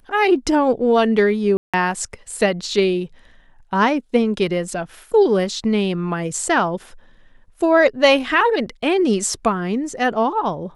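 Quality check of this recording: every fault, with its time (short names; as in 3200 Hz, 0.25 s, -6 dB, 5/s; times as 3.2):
1.57–1.74 gap 0.166 s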